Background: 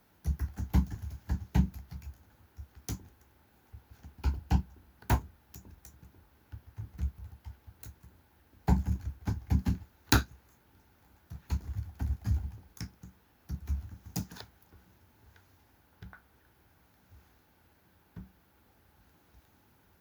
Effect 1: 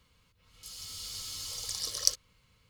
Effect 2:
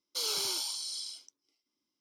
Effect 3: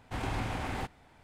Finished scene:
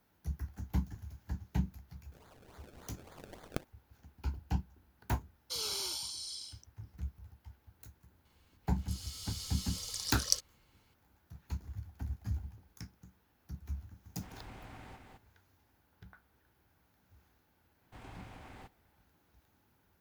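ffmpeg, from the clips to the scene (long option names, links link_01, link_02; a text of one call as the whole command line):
ffmpeg -i bed.wav -i cue0.wav -i cue1.wav -i cue2.wav -filter_complex "[1:a]asplit=2[link_01][link_02];[3:a]asplit=2[link_03][link_04];[0:a]volume=-6.5dB[link_05];[link_01]acrusher=samples=31:mix=1:aa=0.000001:lfo=1:lforange=31:lforate=3.5[link_06];[link_03]aecho=1:1:212:0.668[link_07];[link_06]atrim=end=2.69,asetpts=PTS-STARTPTS,volume=-15.5dB,afade=type=in:duration=0.004:curve=hsin,afade=type=out:start_time=2.686:duration=0.004:curve=hsin,adelay=1490[link_08];[2:a]atrim=end=2,asetpts=PTS-STARTPTS,volume=-4.5dB,afade=type=in:duration=0.004:curve=hsin,afade=type=out:start_time=1.996:duration=0.004:curve=hsin,adelay=5350[link_09];[link_02]atrim=end=2.69,asetpts=PTS-STARTPTS,volume=-3.5dB,afade=type=in:duration=0.004:curve=hsin,afade=type=out:start_time=2.686:duration=0.004:curve=hsin,adelay=8250[link_10];[link_07]atrim=end=1.23,asetpts=PTS-STARTPTS,volume=-17.5dB,afade=type=in:duration=0.004:curve=hsin,afade=type=out:start_time=1.226:duration=0.004:curve=hsin,adelay=14100[link_11];[link_04]atrim=end=1.23,asetpts=PTS-STARTPTS,volume=-16.5dB,afade=type=in:duration=0.004:curve=hsin,afade=type=out:start_time=1.226:duration=0.004:curve=hsin,adelay=17810[link_12];[link_05][link_08][link_09][link_10][link_11][link_12]amix=inputs=6:normalize=0" out.wav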